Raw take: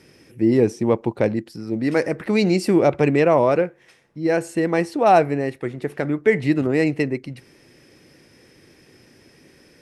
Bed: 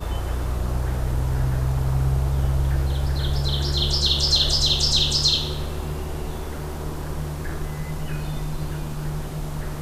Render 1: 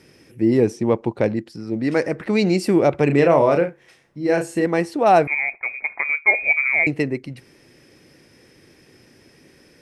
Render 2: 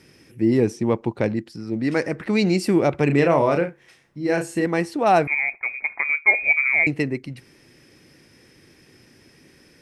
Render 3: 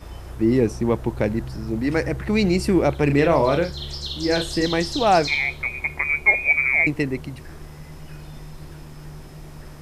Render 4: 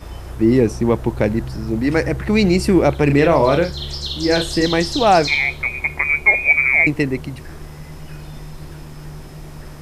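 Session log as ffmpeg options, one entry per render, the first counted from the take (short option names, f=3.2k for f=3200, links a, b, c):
-filter_complex "[0:a]asettb=1/sr,asplit=3[a][b][c];[a]atrim=end=0.774[d];[b]atrim=start=0.77:end=2.5,asetpts=PTS-STARTPTS,afade=t=in:d=0.004:c=qsin,afade=t=out:st=1.726:d=0.004:c=qsin,lowpass=9.2k[e];[c]atrim=start=2.496[f];[d][e]acrossfade=d=0.004:c1=hsin:c2=qsin[g];[g][f]acrossfade=d=0.004:c1=qsin:c2=hsin,asettb=1/sr,asplit=3[h][i][j];[h]atrim=end=3.064[k];[i]atrim=start=3.06:end=4.66,asetpts=PTS-STARTPTS,afade=t=in:d=0.004:c=qsin,afade=t=out:st=1.596:d=0.004:c=qsin,asplit=2[l][m];[m]adelay=35,volume=-6dB[n];[l][n]amix=inputs=2:normalize=0,atrim=end_sample=70560[o];[j]atrim=start=4.656[p];[k][o]acrossfade=d=0.004:c1=hsin:c2=qsin[q];[q][p]acrossfade=d=0.004:c1=qsin:c2=hsin,asettb=1/sr,asplit=3[r][s][t];[r]atrim=end=5.274[u];[s]atrim=start=5.27:end=6.87,asetpts=PTS-STARTPTS,afade=t=in:d=0.004:c=qsin,afade=t=out:st=1.596:d=0.004:c=qsin,lowpass=f=2.2k:t=q:w=0.5098,lowpass=f=2.2k:t=q:w=0.6013,lowpass=f=2.2k:t=q:w=0.9,lowpass=f=2.2k:t=q:w=2.563,afreqshift=-2600[v];[t]atrim=start=6.866[w];[u][v]acrossfade=d=0.004:c1=hsin:c2=qsin[x];[x][w]acrossfade=d=0.004:c1=qsin:c2=hsin"
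-af "equalizer=f=550:w=1.1:g=-4"
-filter_complex "[1:a]volume=-10.5dB[a];[0:a][a]amix=inputs=2:normalize=0"
-af "volume=4.5dB,alimiter=limit=-3dB:level=0:latency=1"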